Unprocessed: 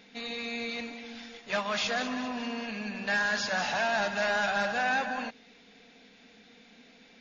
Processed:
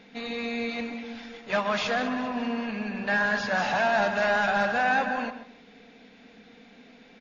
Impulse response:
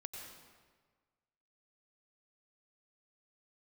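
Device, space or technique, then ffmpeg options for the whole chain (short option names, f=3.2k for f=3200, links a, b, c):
through cloth: -filter_complex "[0:a]asettb=1/sr,asplit=3[a][b][c];[a]atrim=end=1.954[d];[b]atrim=start=1.95:end=3.55,asetpts=PTS-STARTPTS,afade=t=in:d=0.004:c=qsin,afade=t=out:st=1.596:d=0.004:c=qsin,highshelf=f=5.6k:g=-7[e];[c]atrim=start=3.546[f];[d][e]acrossfade=d=0.004:c1=hsin:c2=qsin[g];[g][f]acrossfade=d=0.004:c1=qsin:c2=hsin,highshelf=f=3.2k:g=-11,asplit=2[h][i];[i]adelay=132,lowpass=f=2k:p=1,volume=-10dB,asplit=2[j][k];[k]adelay=132,lowpass=f=2k:p=1,volume=0.24,asplit=2[l][m];[m]adelay=132,lowpass=f=2k:p=1,volume=0.24[n];[h][j][l][n]amix=inputs=4:normalize=0,volume=5.5dB"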